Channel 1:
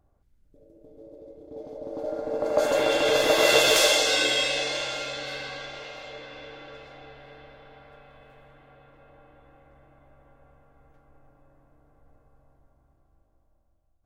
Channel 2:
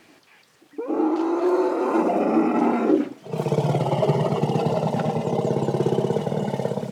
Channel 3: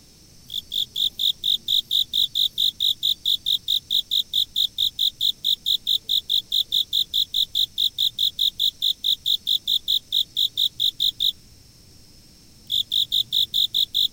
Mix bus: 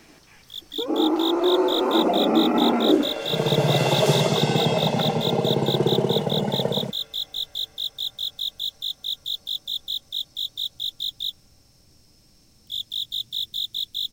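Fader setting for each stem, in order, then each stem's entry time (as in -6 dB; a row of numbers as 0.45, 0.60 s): -8.0, +0.5, -7.5 dB; 0.30, 0.00, 0.00 s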